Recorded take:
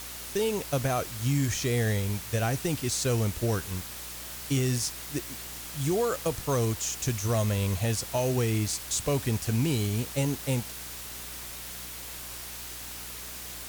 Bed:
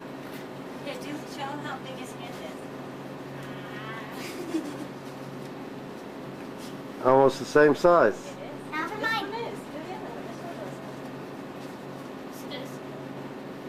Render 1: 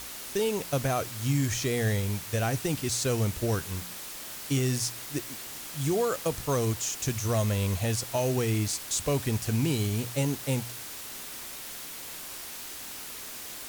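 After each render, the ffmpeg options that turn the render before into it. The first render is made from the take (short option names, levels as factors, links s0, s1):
-af "bandreject=f=60:t=h:w=4,bandreject=f=120:t=h:w=4,bandreject=f=180:t=h:w=4"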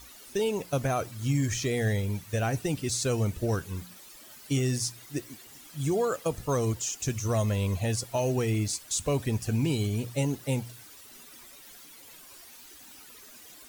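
-af "afftdn=nr=13:nf=-41"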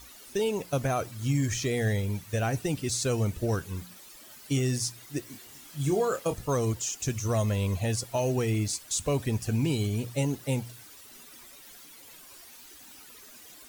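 -filter_complex "[0:a]asettb=1/sr,asplit=3[s0][s1][s2];[s0]atrim=end=5.244[s3];[s1]atrim=start=5.24:end=6.34,asetpts=PTS-STARTPTS,afade=t=in:d=0.004:c=qsin,afade=t=out:st=1.096:d=0.004:c=qsin,asplit=2[s4][s5];[s5]adelay=28,volume=0.447[s6];[s4][s6]amix=inputs=2:normalize=0,atrim=end_sample=48510[s7];[s2]atrim=start=6.336[s8];[s3][s7]acrossfade=d=0.004:c1=hsin:c2=qsin[s9];[s9][s8]acrossfade=d=0.004:c1=qsin:c2=hsin"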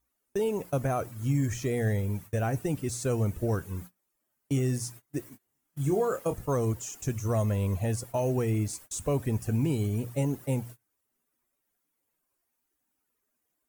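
-af "agate=range=0.0398:threshold=0.00891:ratio=16:detection=peak,equalizer=f=4100:w=0.79:g=-12"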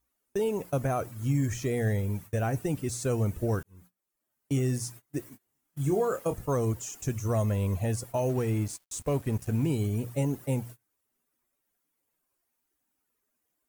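-filter_complex "[0:a]asettb=1/sr,asplit=3[s0][s1][s2];[s0]atrim=end=8.294[s3];[s1]atrim=start=8.29:end=9.64,asetpts=PTS-STARTPTS,afade=t=in:d=0.004:c=qsin,afade=t=out:st=1.346:d=0.004:c=qsin,aeval=exprs='sgn(val(0))*max(abs(val(0))-0.00447,0)':c=same[s4];[s2]atrim=start=9.636[s5];[s3][s4]acrossfade=d=0.004:c1=hsin:c2=qsin[s6];[s6][s5]acrossfade=d=0.004:c1=qsin:c2=hsin,asplit=2[s7][s8];[s7]atrim=end=3.63,asetpts=PTS-STARTPTS,afade=t=out:st=3.626:d=0.004:c=hsin[s9];[s8]atrim=start=3.63,asetpts=PTS-STARTPTS,afade=t=in:d=0.93[s10];[s9][s10]concat=n=2:v=0:a=1"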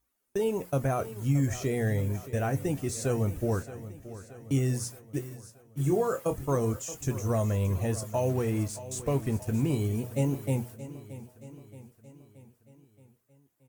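-filter_complex "[0:a]asplit=2[s0][s1];[s1]adelay=22,volume=0.237[s2];[s0][s2]amix=inputs=2:normalize=0,aecho=1:1:625|1250|1875|2500|3125:0.178|0.0978|0.0538|0.0296|0.0163"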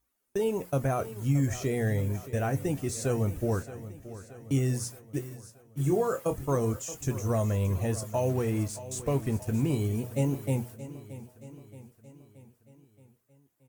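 -af anull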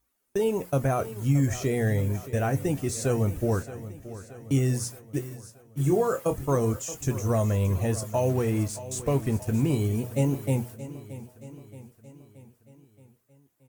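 -af "volume=1.41"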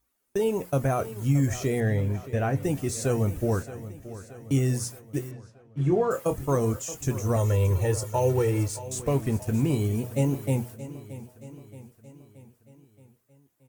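-filter_complex "[0:a]asettb=1/sr,asplit=3[s0][s1][s2];[s0]atrim=end=1.804[s3];[s1]atrim=start=1.8:end=2.63,asetpts=PTS-STARTPTS,afade=t=in:d=0.004:c=qsin,afade=t=out:st=0.826:d=0.004:c=qsin,acrossover=split=4500[s4][s5];[s5]acompressor=threshold=0.00158:ratio=4:attack=1:release=60[s6];[s4][s6]amix=inputs=2:normalize=0[s7];[s2]atrim=start=2.626[s8];[s3][s7]acrossfade=d=0.004:c1=hsin:c2=qsin[s9];[s9][s8]acrossfade=d=0.004:c1=qsin:c2=hsin,asettb=1/sr,asplit=3[s10][s11][s12];[s10]atrim=end=5.314[s13];[s11]atrim=start=5.31:end=6.11,asetpts=PTS-STARTPTS,afade=t=in:d=0.004:c=qsin,afade=t=out:st=0.796:d=0.004:c=qsin,lowpass=3300[s14];[s12]atrim=start=6.106[s15];[s13][s14]acrossfade=d=0.004:c1=hsin:c2=qsin[s16];[s16][s15]acrossfade=d=0.004:c1=qsin:c2=hsin,asettb=1/sr,asplit=3[s17][s18][s19];[s17]atrim=end=7.364[s20];[s18]atrim=start=7.36:end=8.88,asetpts=PTS-STARTPTS,afade=t=in:d=0.004:c=qsin,afade=t=out:st=1.516:d=0.004:c=qsin,aecho=1:1:2.2:0.65,atrim=end_sample=67032[s21];[s19]atrim=start=8.876[s22];[s20][s21]acrossfade=d=0.004:c1=hsin:c2=qsin[s23];[s23][s22]acrossfade=d=0.004:c1=qsin:c2=hsin"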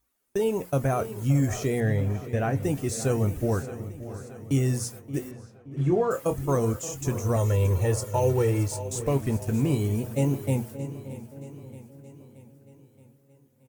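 -filter_complex "[0:a]asplit=2[s0][s1];[s1]adelay=574,lowpass=f=1500:p=1,volume=0.188,asplit=2[s2][s3];[s3]adelay=574,lowpass=f=1500:p=1,volume=0.49,asplit=2[s4][s5];[s5]adelay=574,lowpass=f=1500:p=1,volume=0.49,asplit=2[s6][s7];[s7]adelay=574,lowpass=f=1500:p=1,volume=0.49,asplit=2[s8][s9];[s9]adelay=574,lowpass=f=1500:p=1,volume=0.49[s10];[s0][s2][s4][s6][s8][s10]amix=inputs=6:normalize=0"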